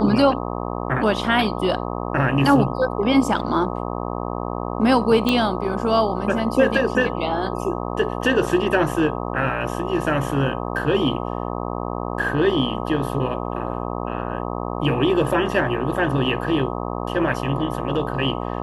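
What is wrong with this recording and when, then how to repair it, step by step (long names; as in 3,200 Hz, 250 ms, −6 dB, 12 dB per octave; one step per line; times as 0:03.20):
mains buzz 60 Hz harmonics 21 −27 dBFS
0:05.29: click −6 dBFS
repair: click removal
hum removal 60 Hz, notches 21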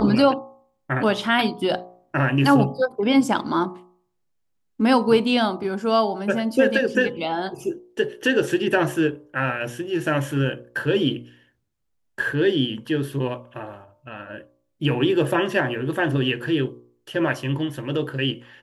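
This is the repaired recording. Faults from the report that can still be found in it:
none of them is left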